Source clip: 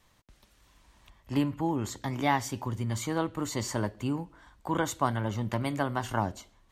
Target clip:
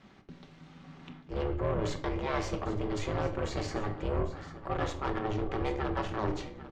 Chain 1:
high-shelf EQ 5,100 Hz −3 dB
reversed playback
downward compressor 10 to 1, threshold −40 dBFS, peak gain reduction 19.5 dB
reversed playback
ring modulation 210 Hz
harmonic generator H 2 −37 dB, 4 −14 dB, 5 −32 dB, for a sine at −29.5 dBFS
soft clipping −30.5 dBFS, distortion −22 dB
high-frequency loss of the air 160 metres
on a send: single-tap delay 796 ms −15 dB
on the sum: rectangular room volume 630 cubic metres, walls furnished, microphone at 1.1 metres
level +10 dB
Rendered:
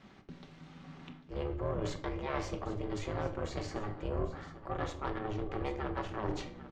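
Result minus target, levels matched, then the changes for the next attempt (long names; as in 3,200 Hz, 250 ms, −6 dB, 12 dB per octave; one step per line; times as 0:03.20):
downward compressor: peak gain reduction +5.5 dB
change: downward compressor 10 to 1, threshold −34 dBFS, peak gain reduction 14 dB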